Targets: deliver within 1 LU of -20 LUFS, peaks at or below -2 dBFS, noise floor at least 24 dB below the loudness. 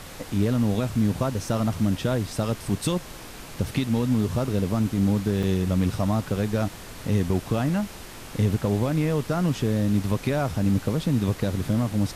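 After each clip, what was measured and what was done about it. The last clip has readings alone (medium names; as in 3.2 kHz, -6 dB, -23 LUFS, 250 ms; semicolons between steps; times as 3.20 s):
dropouts 1; longest dropout 4.2 ms; noise floor -41 dBFS; noise floor target -49 dBFS; loudness -25.0 LUFS; peak level -12.5 dBFS; loudness target -20.0 LUFS
-> interpolate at 5.43 s, 4.2 ms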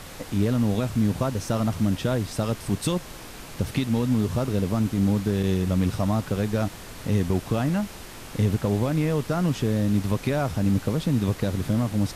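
dropouts 0; noise floor -41 dBFS; noise floor target -49 dBFS
-> noise print and reduce 8 dB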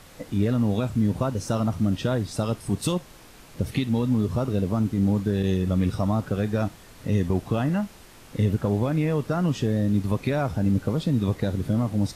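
noise floor -48 dBFS; noise floor target -49 dBFS
-> noise print and reduce 6 dB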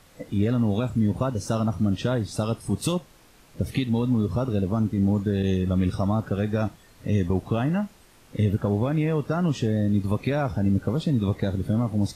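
noise floor -54 dBFS; loudness -25.0 LUFS; peak level -12.5 dBFS; loudness target -20.0 LUFS
-> trim +5 dB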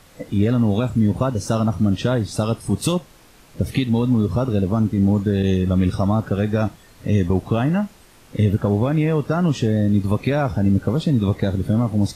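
loudness -20.0 LUFS; peak level -7.5 dBFS; noise floor -49 dBFS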